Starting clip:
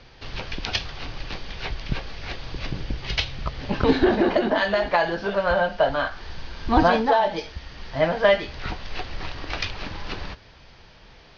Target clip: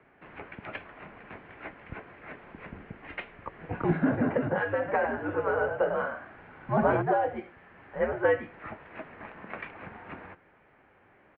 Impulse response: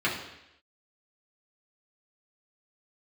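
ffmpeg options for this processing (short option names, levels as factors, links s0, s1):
-filter_complex "[0:a]asplit=3[s0][s1][s2];[s0]afade=t=out:st=4.87:d=0.02[s3];[s1]asplit=5[s4][s5][s6][s7][s8];[s5]adelay=98,afreqshift=56,volume=0.447[s9];[s6]adelay=196,afreqshift=112,volume=0.133[s10];[s7]adelay=294,afreqshift=168,volume=0.0403[s11];[s8]adelay=392,afreqshift=224,volume=0.012[s12];[s4][s9][s10][s11][s12]amix=inputs=5:normalize=0,afade=t=in:st=4.87:d=0.02,afade=t=out:st=7.01:d=0.02[s13];[s2]afade=t=in:st=7.01:d=0.02[s14];[s3][s13][s14]amix=inputs=3:normalize=0,highpass=f=200:t=q:w=0.5412,highpass=f=200:t=q:w=1.307,lowpass=f=2300:t=q:w=0.5176,lowpass=f=2300:t=q:w=0.7071,lowpass=f=2300:t=q:w=1.932,afreqshift=-100,volume=0.473"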